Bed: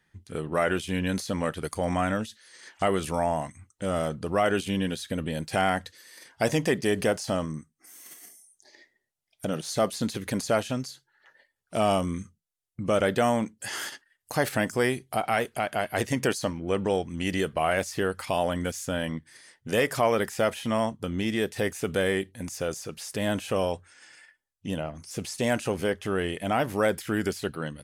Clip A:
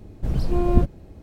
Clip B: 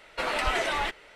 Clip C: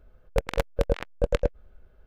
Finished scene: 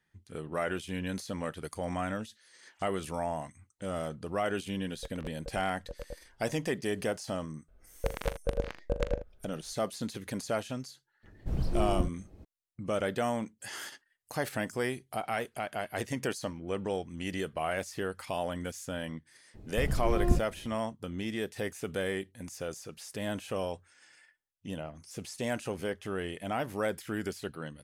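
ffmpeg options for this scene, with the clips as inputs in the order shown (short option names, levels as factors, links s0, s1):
-filter_complex "[3:a]asplit=2[s0][s1];[1:a]asplit=2[s2][s3];[0:a]volume=0.422[s4];[s0]alimiter=limit=0.119:level=0:latency=1:release=13[s5];[s1]aecho=1:1:41|79:0.299|0.224[s6];[s2]dynaudnorm=f=150:g=3:m=2.66[s7];[s5]atrim=end=2.06,asetpts=PTS-STARTPTS,volume=0.211,afade=t=in:d=0.004:c=hsin,afade=t=out:st=2.056:d=0.004:c=hsin,adelay=4670[s8];[s6]atrim=end=2.06,asetpts=PTS-STARTPTS,volume=0.447,afade=t=in:d=0.004:c=hsin,afade=t=out:st=2.056:d=0.004:c=hsin,adelay=7680[s9];[s7]atrim=end=1.22,asetpts=PTS-STARTPTS,volume=0.188,afade=t=in:d=0.004:c=hsin,afade=t=out:st=1.216:d=0.004:c=hsin,adelay=11230[s10];[s3]atrim=end=1.22,asetpts=PTS-STARTPTS,volume=0.398,afade=t=in:d=0.004:c=hsin,afade=t=out:st=1.216:d=0.004:c=hsin,adelay=19540[s11];[s4][s8][s9][s10][s11]amix=inputs=5:normalize=0"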